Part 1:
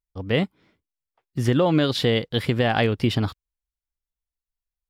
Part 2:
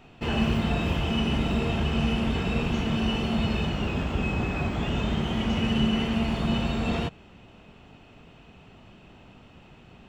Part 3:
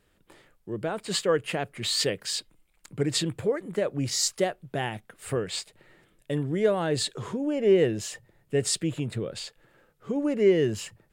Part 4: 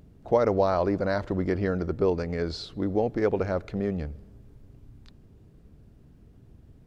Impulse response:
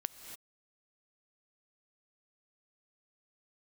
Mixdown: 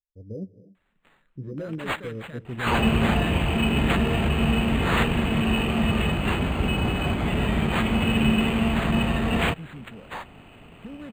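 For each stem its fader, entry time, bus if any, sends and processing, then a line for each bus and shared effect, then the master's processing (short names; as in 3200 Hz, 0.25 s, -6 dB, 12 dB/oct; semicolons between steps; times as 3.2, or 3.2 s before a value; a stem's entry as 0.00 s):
-11.0 dB, 0.00 s, send -5.5 dB, steep low-pass 550 Hz 48 dB/oct; limiter -15 dBFS, peak gain reduction 5.5 dB; flange 0.41 Hz, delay 7.6 ms, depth 8.4 ms, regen +41%
+3.0 dB, 2.45 s, no send, high shelf 2300 Hz +9 dB
-3.5 dB, 0.75 s, send -20.5 dB, fixed phaser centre 510 Hz, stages 8; soft clip -26 dBFS, distortion -10 dB; graphic EQ 500/1000/2000/4000/8000 Hz -9/-9/+4/+8/+12 dB
off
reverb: on, pre-delay 3 ms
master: decimation joined by straight lines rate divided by 8×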